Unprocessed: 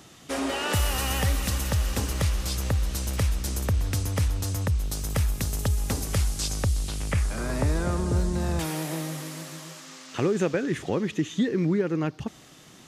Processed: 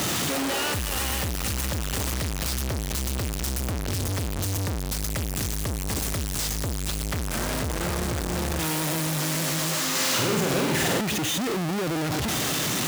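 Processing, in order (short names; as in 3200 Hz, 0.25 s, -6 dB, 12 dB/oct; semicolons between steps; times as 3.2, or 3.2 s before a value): infinite clipping; HPF 53 Hz; 9.9–11.01 flutter echo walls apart 8.2 m, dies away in 0.94 s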